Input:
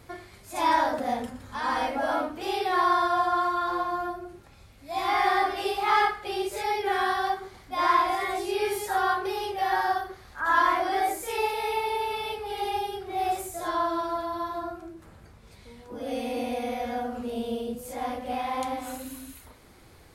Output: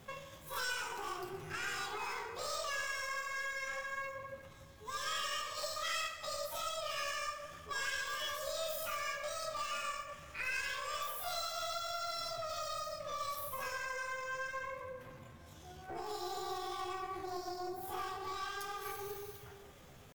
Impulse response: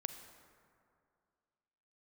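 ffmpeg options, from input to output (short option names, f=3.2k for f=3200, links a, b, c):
-filter_complex "[0:a]acrossover=split=2400[a][b];[a]acompressor=threshold=-34dB:ratio=16[c];[c][b]amix=inputs=2:normalize=0,asetrate=68011,aresample=44100,atempo=0.64842,flanger=delay=7.7:depth=4.5:regen=-48:speed=0.73:shape=sinusoidal,aeval=exprs='0.0562*(cos(1*acos(clip(val(0)/0.0562,-1,1)))-cos(1*PI/2))+0.00316*(cos(8*acos(clip(val(0)/0.0562,-1,1)))-cos(8*PI/2))':c=same[d];[1:a]atrim=start_sample=2205[e];[d][e]afir=irnorm=-1:irlink=0,volume=1.5dB"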